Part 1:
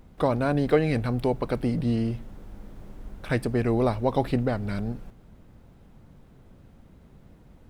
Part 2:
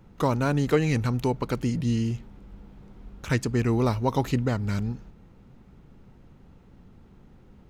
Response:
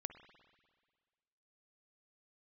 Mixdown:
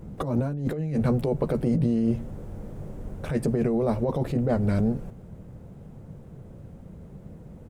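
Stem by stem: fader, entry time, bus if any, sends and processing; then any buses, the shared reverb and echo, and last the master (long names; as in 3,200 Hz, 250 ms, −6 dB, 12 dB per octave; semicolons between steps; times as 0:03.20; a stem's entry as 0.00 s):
−3.5 dB, 0.00 s, no send, downward compressor 3 to 1, threshold −25 dBFS, peak gain reduction 7.5 dB; octave-band graphic EQ 250/500/4,000/8,000 Hz −7/+7/−4/+5 dB
−1.5 dB, 13 ms, no send, parametric band 2,600 Hz −9 dB 2.5 octaves; automatic ducking −11 dB, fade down 1.45 s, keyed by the first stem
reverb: not used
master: parametric band 160 Hz +13 dB 2.6 octaves; compressor whose output falls as the input rises −24 dBFS, ratio −1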